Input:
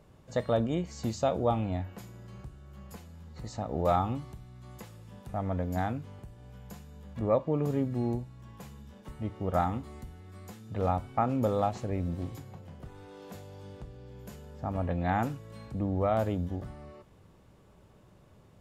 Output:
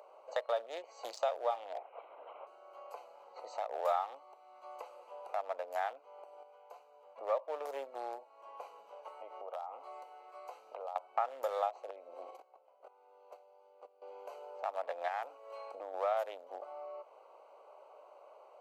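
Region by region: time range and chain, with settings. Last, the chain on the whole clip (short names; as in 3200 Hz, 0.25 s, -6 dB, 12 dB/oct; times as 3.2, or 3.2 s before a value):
1.73–2.47 bell 130 Hz -8 dB 1.9 oct + LPC vocoder at 8 kHz whisper
6.43–7.39 HPF 140 Hz 24 dB/oct + upward expander, over -37 dBFS
8.95–10.96 low shelf 250 Hz -11 dB + compressor, threshold -41 dBFS
11.9–14.02 gate -42 dBFS, range -18 dB + compressor 4:1, threshold -35 dBFS
15.08–15.94 compressor 3:1, threshold -32 dBFS + mismatched tape noise reduction encoder only
whole clip: Wiener smoothing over 25 samples; steep high-pass 560 Hz 36 dB/oct; compressor 2:1, threshold -59 dBFS; gain +14 dB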